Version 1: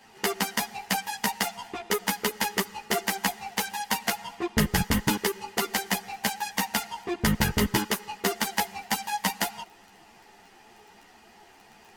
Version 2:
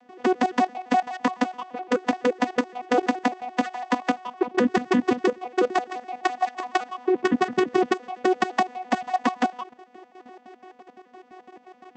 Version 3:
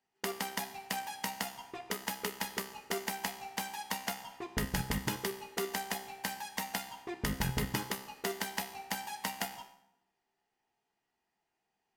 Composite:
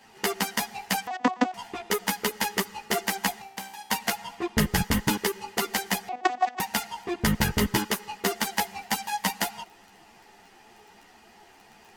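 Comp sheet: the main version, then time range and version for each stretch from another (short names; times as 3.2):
1
1.07–1.54 from 2
3.42–3.9 from 3
6.09–6.6 from 2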